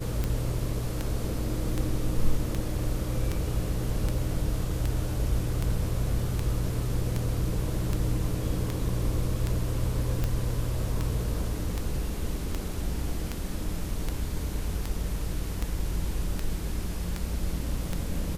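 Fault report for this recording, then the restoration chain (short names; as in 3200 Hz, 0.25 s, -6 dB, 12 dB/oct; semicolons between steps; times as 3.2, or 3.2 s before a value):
tick 78 rpm -15 dBFS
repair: de-click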